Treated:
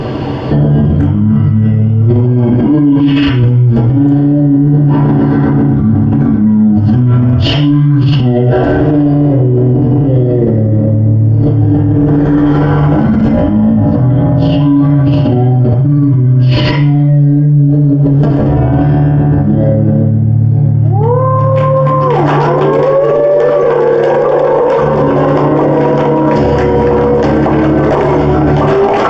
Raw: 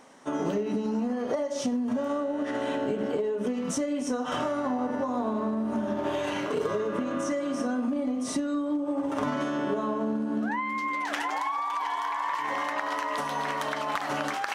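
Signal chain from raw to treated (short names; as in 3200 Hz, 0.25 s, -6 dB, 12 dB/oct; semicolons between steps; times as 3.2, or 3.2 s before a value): high shelf 7000 Hz +5.5 dB; notch 7900 Hz, Q 5.4; speed mistake 15 ips tape played at 7.5 ips; tilt -3 dB/oct; notches 60/120/180/240 Hz; negative-ratio compressor -29 dBFS, ratio -1; on a send at -1 dB: reverb RT60 0.50 s, pre-delay 3 ms; on the sum: maximiser +26.5 dB; gain -1 dB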